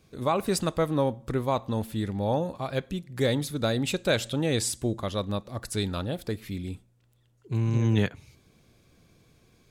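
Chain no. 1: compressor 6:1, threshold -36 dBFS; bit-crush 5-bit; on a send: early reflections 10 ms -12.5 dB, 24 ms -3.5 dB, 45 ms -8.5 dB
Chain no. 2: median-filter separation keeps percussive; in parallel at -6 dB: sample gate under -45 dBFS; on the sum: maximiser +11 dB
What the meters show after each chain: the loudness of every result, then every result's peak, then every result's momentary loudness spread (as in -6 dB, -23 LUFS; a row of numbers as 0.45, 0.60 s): -42.0, -18.0 LUFS; -18.0, -1.0 dBFS; 10, 14 LU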